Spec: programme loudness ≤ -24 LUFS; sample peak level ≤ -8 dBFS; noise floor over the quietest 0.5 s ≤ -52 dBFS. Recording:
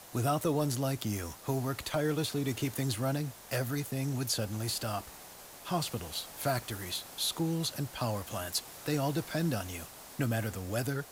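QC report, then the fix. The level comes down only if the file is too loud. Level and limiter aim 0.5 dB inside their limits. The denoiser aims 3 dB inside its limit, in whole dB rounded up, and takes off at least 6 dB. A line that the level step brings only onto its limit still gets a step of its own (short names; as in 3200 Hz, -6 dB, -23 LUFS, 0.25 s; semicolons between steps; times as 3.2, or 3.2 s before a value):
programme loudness -33.5 LUFS: OK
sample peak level -19.0 dBFS: OK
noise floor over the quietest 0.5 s -50 dBFS: fail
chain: denoiser 6 dB, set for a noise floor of -50 dBFS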